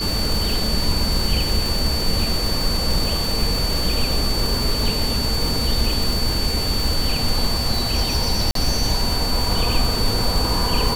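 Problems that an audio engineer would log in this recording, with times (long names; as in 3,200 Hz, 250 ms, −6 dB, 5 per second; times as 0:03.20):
surface crackle 340 per second −23 dBFS
whistle 4,500 Hz −24 dBFS
0:08.51–0:08.55: drop-out 43 ms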